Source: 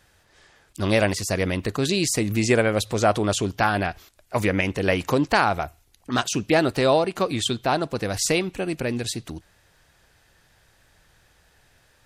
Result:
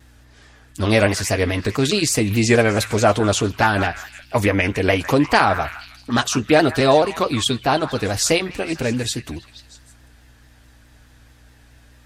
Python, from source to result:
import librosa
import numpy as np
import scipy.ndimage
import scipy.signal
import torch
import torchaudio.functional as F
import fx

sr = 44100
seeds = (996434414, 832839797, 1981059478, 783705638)

p1 = fx.add_hum(x, sr, base_hz=60, snr_db=31)
p2 = fx.notch_comb(p1, sr, f0_hz=180.0)
p3 = p2 + fx.echo_stepped(p2, sr, ms=159, hz=1400.0, octaves=0.7, feedback_pct=70, wet_db=-9.5, dry=0)
p4 = fx.vibrato_shape(p3, sr, shape='saw_down', rate_hz=4.7, depth_cents=100.0)
y = F.gain(torch.from_numpy(p4), 5.5).numpy()